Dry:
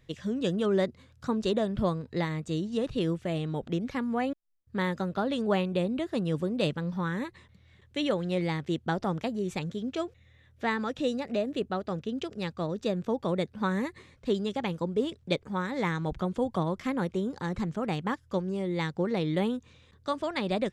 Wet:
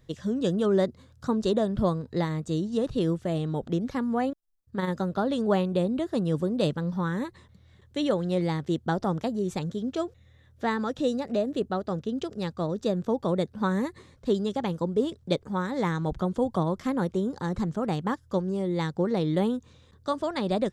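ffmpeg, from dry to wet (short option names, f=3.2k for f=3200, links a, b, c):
-filter_complex "[0:a]asettb=1/sr,asplit=3[a][b][c];[a]atrim=end=4.294[d];[b]atrim=start=4.29:end=4.9,asetpts=PTS-STARTPTS,afade=t=in:d=0.004:c=qsin,afade=t=out:st=0.606:d=0.004:c=qsin,tremolo=f=20:d=0.519[e];[c]atrim=start=4.896[f];[d][e]acrossfade=d=0.004:c1=hsin:c2=qsin[g];[g][f]acrossfade=d=0.004:c1=qsin:c2=hsin,equalizer=f=2.4k:t=o:w=0.86:g=-9,volume=3dB"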